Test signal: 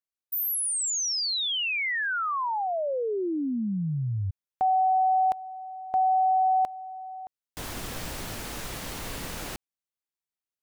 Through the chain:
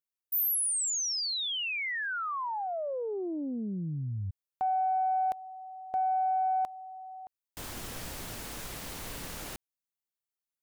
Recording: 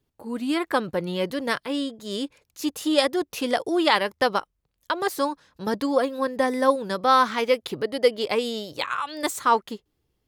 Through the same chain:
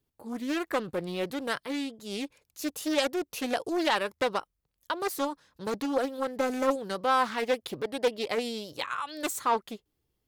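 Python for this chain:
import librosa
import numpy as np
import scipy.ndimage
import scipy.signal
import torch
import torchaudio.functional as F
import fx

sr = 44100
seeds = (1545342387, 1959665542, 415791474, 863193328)

y = fx.high_shelf(x, sr, hz=8700.0, db=7.5)
y = 10.0 ** (-9.5 / 20.0) * np.tanh(y / 10.0 ** (-9.5 / 20.0))
y = fx.doppler_dist(y, sr, depth_ms=0.32)
y = y * librosa.db_to_amplitude(-5.5)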